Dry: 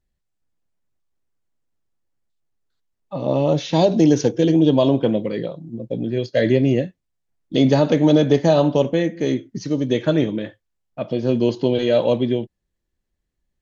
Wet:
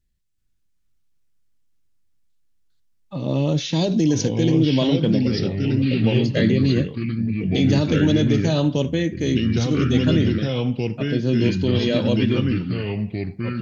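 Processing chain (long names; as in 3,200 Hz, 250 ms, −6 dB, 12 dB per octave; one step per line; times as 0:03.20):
parametric band 720 Hz −13 dB 2 octaves
brickwall limiter −14.5 dBFS, peak gain reduction 5.5 dB
delay with pitch and tempo change per echo 381 ms, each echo −3 semitones, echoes 2
level +4 dB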